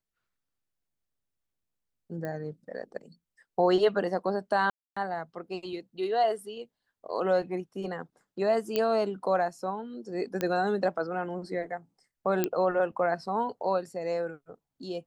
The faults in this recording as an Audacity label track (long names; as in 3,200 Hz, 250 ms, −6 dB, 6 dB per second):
2.250000	2.250000	click −24 dBFS
4.700000	4.960000	drop-out 265 ms
8.760000	8.760000	click −14 dBFS
10.410000	10.410000	click −15 dBFS
12.440000	12.440000	click −12 dBFS